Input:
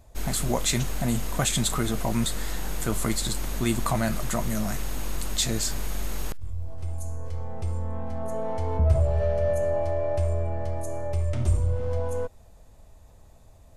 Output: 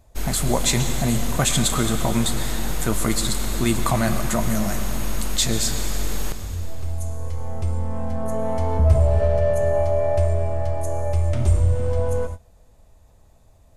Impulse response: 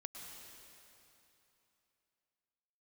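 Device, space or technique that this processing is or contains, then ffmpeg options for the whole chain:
keyed gated reverb: -filter_complex "[0:a]asplit=3[link_01][link_02][link_03];[1:a]atrim=start_sample=2205[link_04];[link_02][link_04]afir=irnorm=-1:irlink=0[link_05];[link_03]apad=whole_len=607207[link_06];[link_05][link_06]sidechaingate=range=-33dB:threshold=-37dB:ratio=16:detection=peak,volume=5.5dB[link_07];[link_01][link_07]amix=inputs=2:normalize=0,asettb=1/sr,asplit=3[link_08][link_09][link_10];[link_08]atrim=end=7.964[link_11];[link_09]atrim=start=7.96:end=9.21,asetpts=PTS-STARTPTS,afade=type=in:duration=0.004:curve=qsin,afade=type=out:start_time=1.246:duration=0.004:curve=qsin,highshelf=frequency=10000:gain=5.5[link_12];[link_10]atrim=start=9.206[link_13];[link_11][link_12]acrossfade=duration=0.004:curve1=hsin:curve2=qsin[link_14];[link_14][link_13]acrossfade=duration=0.004:curve1=qsin:curve2=hsin,volume=-1.5dB"

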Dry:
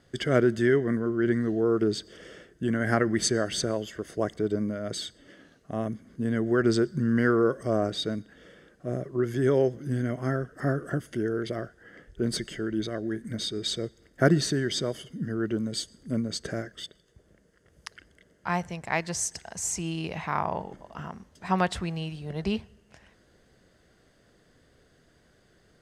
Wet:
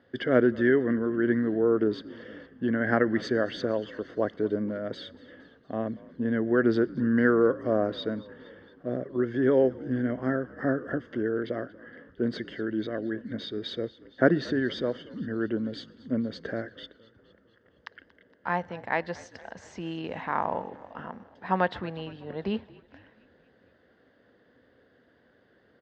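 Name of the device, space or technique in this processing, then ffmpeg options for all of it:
frequency-shifting delay pedal into a guitar cabinet: -filter_complex "[0:a]asplit=6[link_01][link_02][link_03][link_04][link_05][link_06];[link_02]adelay=232,afreqshift=-59,volume=-21dB[link_07];[link_03]adelay=464,afreqshift=-118,volume=-25.2dB[link_08];[link_04]adelay=696,afreqshift=-177,volume=-29.3dB[link_09];[link_05]adelay=928,afreqshift=-236,volume=-33.5dB[link_10];[link_06]adelay=1160,afreqshift=-295,volume=-37.6dB[link_11];[link_01][link_07][link_08][link_09][link_10][link_11]amix=inputs=6:normalize=0,highpass=99,equalizer=frequency=150:width_type=q:width=4:gain=-7,equalizer=frequency=260:width_type=q:width=4:gain=7,equalizer=frequency=510:width_type=q:width=4:gain=7,equalizer=frequency=890:width_type=q:width=4:gain=4,equalizer=frequency=1700:width_type=q:width=4:gain=6,equalizer=frequency=2400:width_type=q:width=4:gain=-5,lowpass=frequency=3700:width=0.5412,lowpass=frequency=3700:width=1.3066,volume=-2.5dB"

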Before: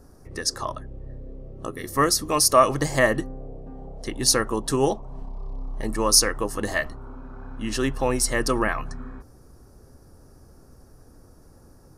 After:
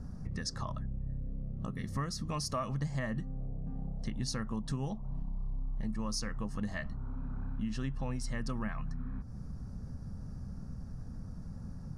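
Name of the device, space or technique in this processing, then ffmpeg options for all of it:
jukebox: -af "lowpass=5900,lowshelf=frequency=260:width_type=q:width=3:gain=9.5,acompressor=threshold=-34dB:ratio=4,volume=-1.5dB"

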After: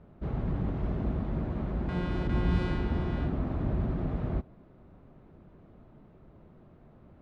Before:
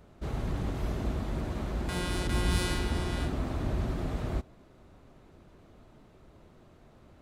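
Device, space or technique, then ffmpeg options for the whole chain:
phone in a pocket: -af "lowpass=3300,equalizer=frequency=170:width_type=o:width=0.95:gain=5,highshelf=frequency=2100:gain=-10.5"

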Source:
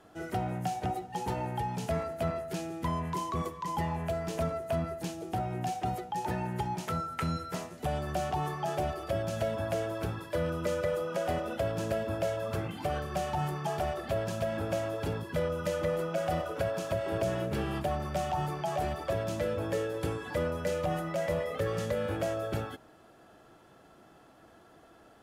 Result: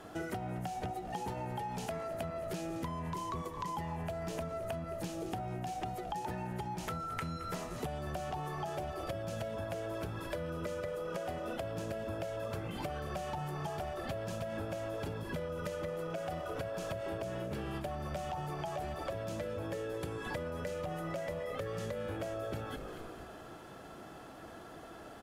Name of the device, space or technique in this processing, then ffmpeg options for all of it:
serial compression, leveller first: -filter_complex "[0:a]asettb=1/sr,asplit=3[link_01][link_02][link_03];[link_01]atrim=end=1.574[link_04];[link_02]atrim=start=1.57:end=2.14,asetpts=PTS-STARTPTS,afade=type=in:duration=0.004:curve=qsin,afade=type=out:start_time=0.566:duration=0.004:curve=qsin,equalizer=frequency=68:width_type=o:width=2.3:gain=-9[link_05];[link_03]atrim=start=2.136[link_06];[link_04][link_05]acrossfade=duration=0.004:curve1=hsin:curve2=qsin[link_07];[link_07][link_06]acrossfade=duration=0.004:curve1=qsin:curve2=hsin,asplit=5[link_08][link_09][link_10][link_11][link_12];[link_09]adelay=218,afreqshift=-60,volume=-17dB[link_13];[link_10]adelay=436,afreqshift=-120,volume=-23dB[link_14];[link_11]adelay=654,afreqshift=-180,volume=-29dB[link_15];[link_12]adelay=872,afreqshift=-240,volume=-35.1dB[link_16];[link_08][link_13][link_14][link_15][link_16]amix=inputs=5:normalize=0,acompressor=threshold=-34dB:ratio=2,acompressor=threshold=-44dB:ratio=6,volume=7.5dB"

